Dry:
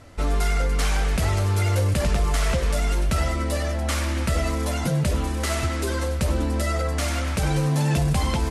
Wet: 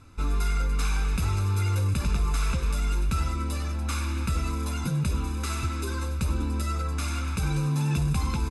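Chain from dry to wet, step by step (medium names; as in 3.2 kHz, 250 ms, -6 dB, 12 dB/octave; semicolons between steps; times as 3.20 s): comb 0.8 ms, depth 77%; trim -8 dB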